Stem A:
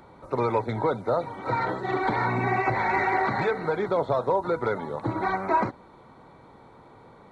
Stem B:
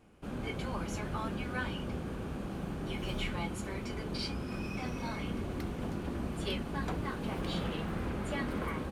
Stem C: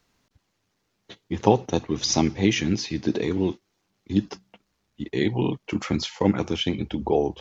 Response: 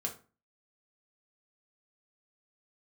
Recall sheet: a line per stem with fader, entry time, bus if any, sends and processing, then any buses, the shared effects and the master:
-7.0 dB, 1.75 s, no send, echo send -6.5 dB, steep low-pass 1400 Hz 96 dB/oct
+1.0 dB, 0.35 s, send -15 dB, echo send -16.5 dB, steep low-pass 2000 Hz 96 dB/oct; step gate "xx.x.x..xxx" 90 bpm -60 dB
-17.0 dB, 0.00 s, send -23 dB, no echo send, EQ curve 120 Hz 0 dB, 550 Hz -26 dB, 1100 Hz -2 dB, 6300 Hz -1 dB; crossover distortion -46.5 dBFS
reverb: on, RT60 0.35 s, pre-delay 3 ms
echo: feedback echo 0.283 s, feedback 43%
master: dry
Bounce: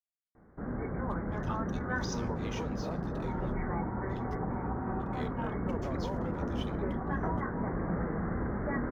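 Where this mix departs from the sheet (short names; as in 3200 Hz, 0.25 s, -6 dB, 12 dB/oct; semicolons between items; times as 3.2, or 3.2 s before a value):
stem A -7.0 dB -> -17.0 dB; stem B: missing step gate "xx.x.x..xxx" 90 bpm -60 dB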